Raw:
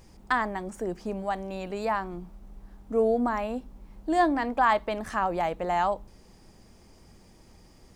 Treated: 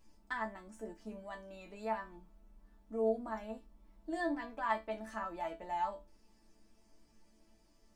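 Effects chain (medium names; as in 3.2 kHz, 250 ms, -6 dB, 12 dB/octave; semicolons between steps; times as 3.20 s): chord resonator A3 sus4, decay 0.22 s; trim +2.5 dB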